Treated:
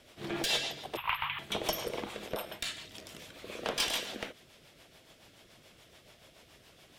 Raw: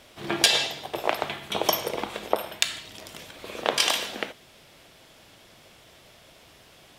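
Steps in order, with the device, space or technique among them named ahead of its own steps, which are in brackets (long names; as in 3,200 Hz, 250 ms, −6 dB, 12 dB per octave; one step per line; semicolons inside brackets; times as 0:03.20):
overdriven rotary cabinet (tube saturation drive 20 dB, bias 0.25; rotating-speaker cabinet horn 7 Hz)
0:00.97–0:01.39: drawn EQ curve 130 Hz 0 dB, 350 Hz −30 dB, 660 Hz −20 dB, 980 Hz +13 dB, 1,500 Hz +3 dB, 2,900 Hz +10 dB, 6,500 Hz −29 dB, 14,000 Hz +6 dB
level −2.5 dB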